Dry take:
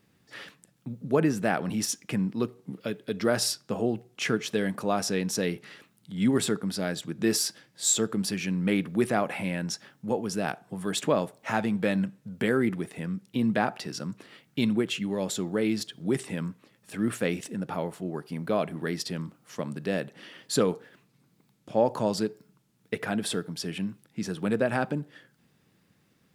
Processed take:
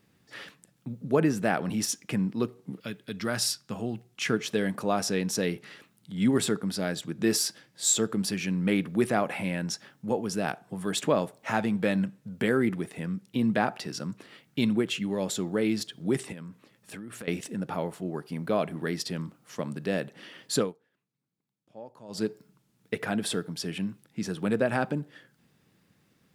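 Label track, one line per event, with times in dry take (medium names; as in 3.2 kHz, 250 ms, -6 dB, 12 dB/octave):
2.800000	4.300000	peaking EQ 470 Hz -9.5 dB 1.6 oct
16.320000	17.280000	compression 12:1, threshold -37 dBFS
20.560000	22.250000	dip -21 dB, fades 0.17 s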